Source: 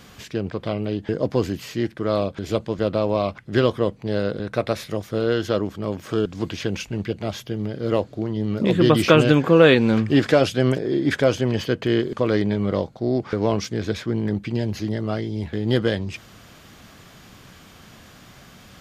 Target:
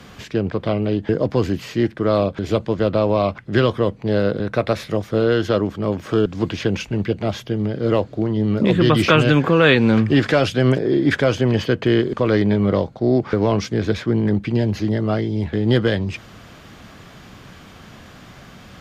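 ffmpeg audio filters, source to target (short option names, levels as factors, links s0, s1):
-filter_complex "[0:a]aemphasis=mode=reproduction:type=cd,acrossover=split=140|990|3600[s0][s1][s2][s3];[s1]alimiter=limit=0.2:level=0:latency=1:release=151[s4];[s0][s4][s2][s3]amix=inputs=4:normalize=0,volume=1.78"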